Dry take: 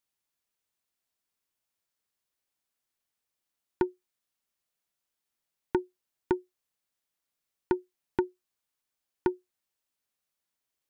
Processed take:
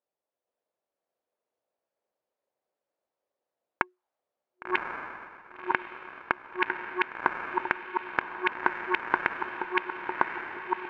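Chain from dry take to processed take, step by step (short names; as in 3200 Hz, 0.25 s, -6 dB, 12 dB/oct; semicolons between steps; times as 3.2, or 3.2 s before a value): regenerating reverse delay 0.476 s, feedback 59%, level -0.5 dB; low shelf 290 Hz +3 dB; compressor 2.5:1, threshold -35 dBFS, peak gain reduction 10.5 dB; added harmonics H 2 -17 dB, 4 -36 dB, 7 -18 dB, 8 -42 dB, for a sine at -12.5 dBFS; auto-wah 560–2700 Hz, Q 3.1, up, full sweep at -37.5 dBFS; diffused feedback echo 1.096 s, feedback 54%, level -11 dB; maximiser +35.5 dB; gain -5 dB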